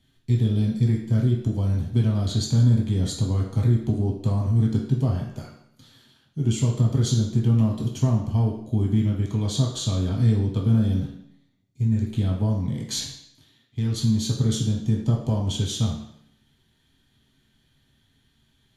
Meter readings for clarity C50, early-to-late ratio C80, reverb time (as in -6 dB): 4.5 dB, 7.5 dB, 0.70 s